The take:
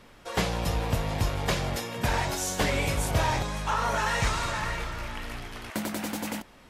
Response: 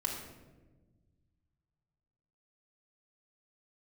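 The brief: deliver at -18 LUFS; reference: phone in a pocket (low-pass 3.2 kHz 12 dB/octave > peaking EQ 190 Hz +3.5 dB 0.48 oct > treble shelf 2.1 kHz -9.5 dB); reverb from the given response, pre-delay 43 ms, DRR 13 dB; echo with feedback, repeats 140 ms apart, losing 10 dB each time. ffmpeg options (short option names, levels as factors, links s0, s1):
-filter_complex "[0:a]aecho=1:1:140|280|420|560:0.316|0.101|0.0324|0.0104,asplit=2[s0][s1];[1:a]atrim=start_sample=2205,adelay=43[s2];[s1][s2]afir=irnorm=-1:irlink=0,volume=0.158[s3];[s0][s3]amix=inputs=2:normalize=0,lowpass=3200,equalizer=f=190:t=o:w=0.48:g=3.5,highshelf=f=2100:g=-9.5,volume=3.98"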